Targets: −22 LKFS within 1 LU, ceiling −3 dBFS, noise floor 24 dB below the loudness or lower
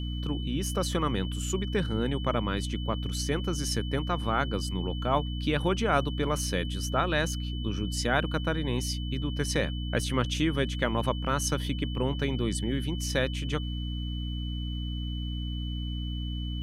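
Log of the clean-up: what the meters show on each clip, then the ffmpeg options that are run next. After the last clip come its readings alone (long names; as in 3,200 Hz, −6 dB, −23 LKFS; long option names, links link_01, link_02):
mains hum 60 Hz; hum harmonics up to 300 Hz; level of the hum −30 dBFS; interfering tone 3,000 Hz; level of the tone −42 dBFS; integrated loudness −30.0 LKFS; sample peak −10.5 dBFS; target loudness −22.0 LKFS
→ -af "bandreject=frequency=60:width_type=h:width=4,bandreject=frequency=120:width_type=h:width=4,bandreject=frequency=180:width_type=h:width=4,bandreject=frequency=240:width_type=h:width=4,bandreject=frequency=300:width_type=h:width=4"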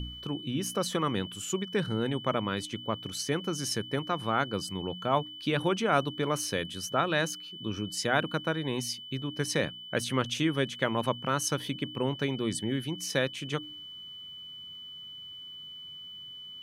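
mains hum none found; interfering tone 3,000 Hz; level of the tone −42 dBFS
→ -af "bandreject=frequency=3000:width=30"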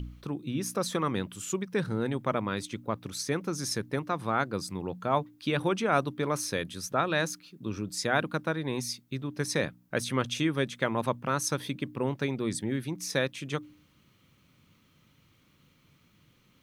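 interfering tone none found; integrated loudness −31.0 LKFS; sample peak −11.0 dBFS; target loudness −22.0 LKFS
→ -af "volume=9dB,alimiter=limit=-3dB:level=0:latency=1"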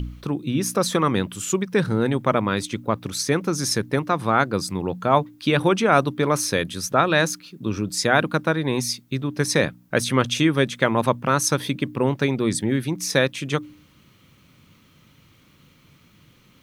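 integrated loudness −22.0 LKFS; sample peak −3.0 dBFS; background noise floor −56 dBFS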